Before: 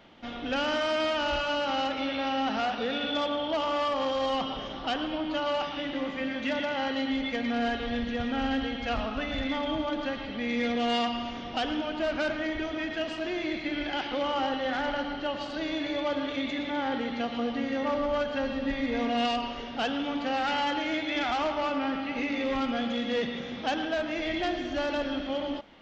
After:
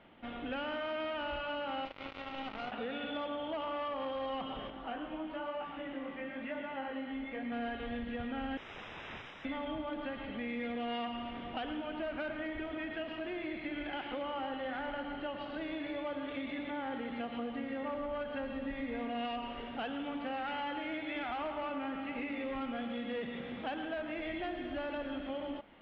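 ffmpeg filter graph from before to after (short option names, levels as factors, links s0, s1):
-filter_complex "[0:a]asettb=1/sr,asplit=3[s0][s1][s2];[s0]atrim=end=1.854[s3];[s1]atrim=start=1.85:end=2.72,asetpts=PTS-STARTPTS,afade=t=in:d=0.004:c=qsin,afade=t=out:st=0.866:d=0.004:c=qsin,acrusher=bits=3:mix=0:aa=0.5,bandreject=f=1700:w=6.8[s4];[s2]atrim=start=2.716[s5];[s3][s4]acrossfade=d=0.004:c1=hsin:c2=qsin[s6];[s6][s5]acrossfade=d=0.004:c1=qsin:c2=hsin,asettb=1/sr,asplit=3[s7][s8][s9];[s7]atrim=end=4.704[s10];[s8]atrim=start=4.7:end=7.52,asetpts=PTS-STARTPTS,afade=t=in:d=0.004:c=qsin,afade=t=out:st=2.816:d=0.004:c=qsin,acrossover=split=2600[s11][s12];[s12]acompressor=threshold=0.00316:ratio=4:attack=1:release=60[s13];[s11][s13]amix=inputs=2:normalize=0,equalizer=f=95:w=2.9:g=-13,flanger=delay=18:depth=7.3:speed=1[s14];[s9]atrim=start=7.516[s15];[s10][s14]acrossfade=d=0.004:c1=hsin:c2=qsin[s16];[s16][s15]acrossfade=d=0.004:c1=qsin:c2=hsin,asettb=1/sr,asplit=3[s17][s18][s19];[s17]atrim=end=8.574[s20];[s18]atrim=start=8.57:end=9.45,asetpts=PTS-STARTPTS,afade=t=in:d=0.004:c=qsin,afade=t=out:st=0.876:d=0.004:c=qsin,equalizer=f=3600:w=4.2:g=13,aeval=exprs='(mod(42.2*val(0)+1,2)-1)/42.2':c=same,asuperstop=centerf=4400:order=20:qfactor=4.4[s21];[s19]atrim=start=9.446[s22];[s20][s21]acrossfade=d=0.004:c1=hsin:c2=qsin[s23];[s23][s22]acrossfade=d=0.004:c1=qsin:c2=hsin,lowpass=f=3000:w=0.5412,lowpass=f=3000:w=1.3066,acompressor=threshold=0.0251:ratio=3,volume=0.596"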